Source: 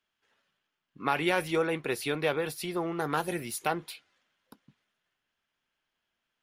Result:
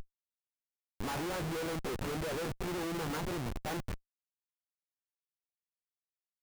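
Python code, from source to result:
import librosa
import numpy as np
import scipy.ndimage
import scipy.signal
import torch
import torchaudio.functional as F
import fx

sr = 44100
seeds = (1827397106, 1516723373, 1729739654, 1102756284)

y = fx.delta_mod(x, sr, bps=16000, step_db=-39.0)
y = fx.schmitt(y, sr, flips_db=-41.0)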